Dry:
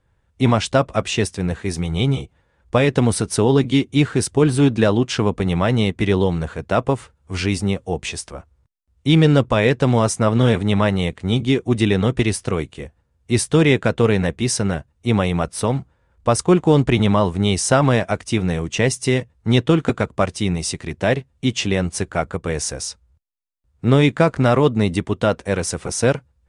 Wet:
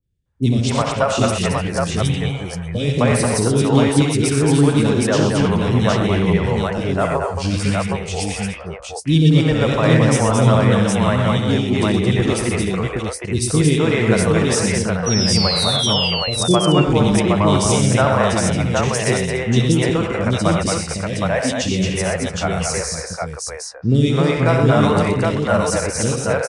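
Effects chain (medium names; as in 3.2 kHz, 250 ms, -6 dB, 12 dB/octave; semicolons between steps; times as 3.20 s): three bands offset in time lows, highs, mids 30/260 ms, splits 420/2700 Hz; painted sound fall, 15.06–16.08 s, 2.7–5.9 kHz -23 dBFS; spectral noise reduction 10 dB; on a send: multi-tap echo 64/90/122/223/294/766 ms -8.5/-8/-7.5/-5/-14.5/-3 dB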